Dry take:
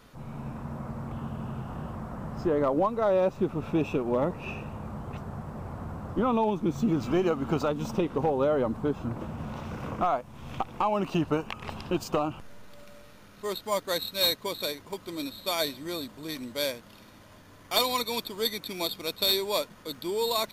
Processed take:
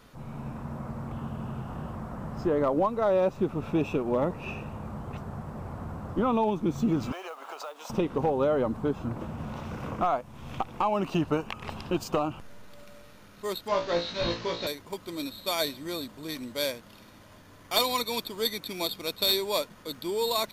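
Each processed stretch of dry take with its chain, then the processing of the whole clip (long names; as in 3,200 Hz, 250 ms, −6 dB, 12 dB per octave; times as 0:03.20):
0:07.12–0:07.90: high-pass filter 590 Hz 24 dB per octave + downward compressor, threshold −35 dBFS + noise that follows the level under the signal 24 dB
0:13.68–0:14.67: linear delta modulator 32 kbit/s, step −38 dBFS + flutter between parallel walls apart 3 metres, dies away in 0.26 s
whole clip: no processing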